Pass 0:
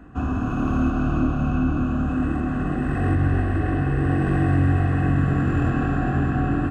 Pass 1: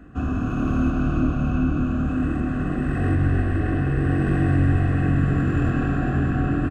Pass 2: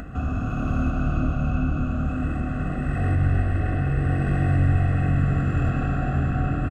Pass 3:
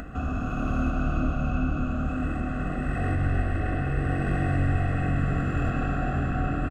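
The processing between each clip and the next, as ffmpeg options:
ffmpeg -i in.wav -filter_complex "[0:a]equalizer=frequency=900:width_type=o:width=0.29:gain=-14.5,asplit=6[link_01][link_02][link_03][link_04][link_05][link_06];[link_02]adelay=99,afreqshift=-100,volume=-14.5dB[link_07];[link_03]adelay=198,afreqshift=-200,volume=-19.7dB[link_08];[link_04]adelay=297,afreqshift=-300,volume=-24.9dB[link_09];[link_05]adelay=396,afreqshift=-400,volume=-30.1dB[link_10];[link_06]adelay=495,afreqshift=-500,volume=-35.3dB[link_11];[link_01][link_07][link_08][link_09][link_10][link_11]amix=inputs=6:normalize=0" out.wav
ffmpeg -i in.wav -af "aecho=1:1:1.5:0.49,acompressor=mode=upward:threshold=-24dB:ratio=2.5,volume=-2.5dB" out.wav
ffmpeg -i in.wav -af "equalizer=frequency=110:width=0.96:gain=-6.5" out.wav

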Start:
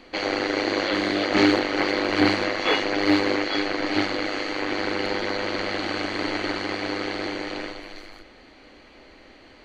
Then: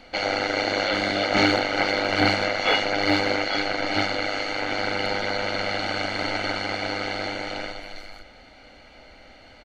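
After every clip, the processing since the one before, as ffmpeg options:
ffmpeg -i in.wav -af "aecho=1:1:1.4:0.59" out.wav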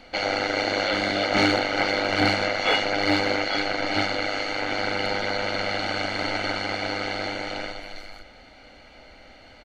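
ffmpeg -i in.wav -af "asoftclip=type=tanh:threshold=-8.5dB" out.wav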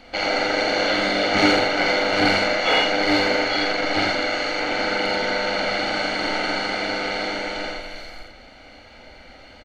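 ffmpeg -i in.wav -af "aecho=1:1:46.65|84.55:0.562|0.708,volume=1dB" out.wav

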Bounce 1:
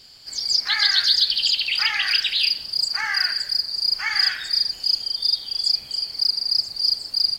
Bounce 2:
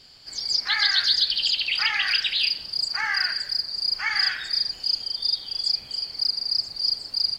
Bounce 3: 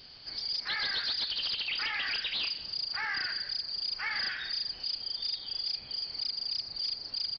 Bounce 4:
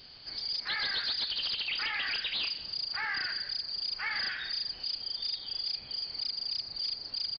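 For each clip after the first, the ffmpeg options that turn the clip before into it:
ffmpeg -i in.wav -af "highshelf=frequency=6600:gain=-10.5" out.wav
ffmpeg -i in.wav -af "acompressor=threshold=-36dB:ratio=1.5,aresample=11025,asoftclip=type=tanh:threshold=-28dB,aresample=44100" out.wav
ffmpeg -i in.wav -af "aresample=11025,aresample=44100" out.wav

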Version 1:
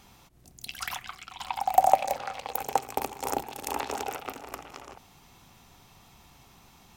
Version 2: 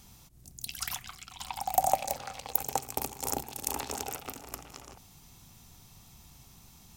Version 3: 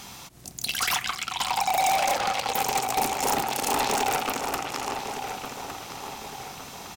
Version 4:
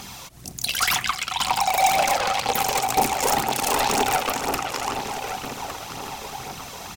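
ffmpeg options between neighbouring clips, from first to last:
ffmpeg -i in.wav -af "bass=frequency=250:gain=10,treble=frequency=4000:gain=12,volume=-6.5dB" out.wav
ffmpeg -i in.wav -filter_complex "[0:a]asplit=2[link_01][link_02];[link_02]highpass=frequency=720:poles=1,volume=27dB,asoftclip=type=tanh:threshold=-1dB[link_03];[link_01][link_03]amix=inputs=2:normalize=0,lowpass=frequency=2900:poles=1,volume=-6dB,asoftclip=type=hard:threshold=-20.5dB,asplit=2[link_04][link_05];[link_05]adelay=1159,lowpass=frequency=4400:poles=1,volume=-8dB,asplit=2[link_06][link_07];[link_07]adelay=1159,lowpass=frequency=4400:poles=1,volume=0.47,asplit=2[link_08][link_09];[link_09]adelay=1159,lowpass=frequency=4400:poles=1,volume=0.47,asplit=2[link_10][link_11];[link_11]adelay=1159,lowpass=frequency=4400:poles=1,volume=0.47,asplit=2[link_12][link_13];[link_13]adelay=1159,lowpass=frequency=4400:poles=1,volume=0.47[link_14];[link_04][link_06][link_08][link_10][link_12][link_14]amix=inputs=6:normalize=0" out.wav
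ffmpeg -i in.wav -af "aphaser=in_gain=1:out_gain=1:delay=2.1:decay=0.42:speed=2:type=triangular,volume=3dB" out.wav

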